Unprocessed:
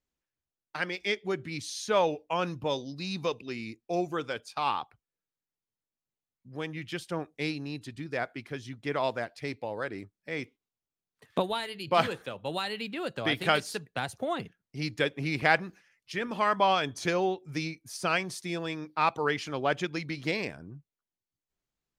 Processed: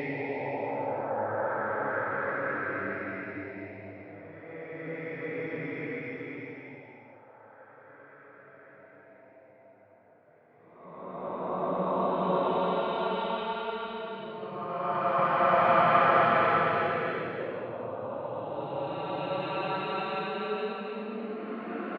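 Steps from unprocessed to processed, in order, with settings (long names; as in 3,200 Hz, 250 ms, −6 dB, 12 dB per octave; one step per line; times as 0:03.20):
auto-filter low-pass saw up 1.9 Hz 450–2,400 Hz
repeating echo 938 ms, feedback 38%, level −22.5 dB
extreme stretch with random phases 6.4×, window 0.50 s, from 0:09.49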